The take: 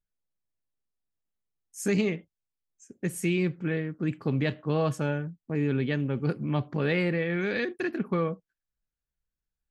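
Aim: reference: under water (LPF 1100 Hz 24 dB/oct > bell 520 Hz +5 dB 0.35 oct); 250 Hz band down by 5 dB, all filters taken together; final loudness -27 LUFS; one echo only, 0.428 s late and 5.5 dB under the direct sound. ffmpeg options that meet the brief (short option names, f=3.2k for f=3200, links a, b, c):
-af "lowpass=f=1.1k:w=0.5412,lowpass=f=1.1k:w=1.3066,equalizer=f=250:t=o:g=-8.5,equalizer=f=520:t=o:w=0.35:g=5,aecho=1:1:428:0.531,volume=4.5dB"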